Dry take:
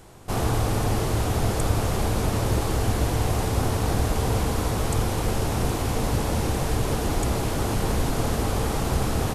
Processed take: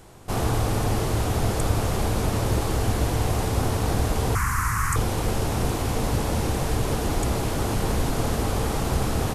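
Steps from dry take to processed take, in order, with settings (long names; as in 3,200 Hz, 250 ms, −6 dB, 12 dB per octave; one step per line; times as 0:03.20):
0:04.35–0:04.96: drawn EQ curve 120 Hz 0 dB, 650 Hz −25 dB, 1,100 Hz +11 dB, 1,900 Hz +11 dB, 3,500 Hz −13 dB, 6,300 Hz +4 dB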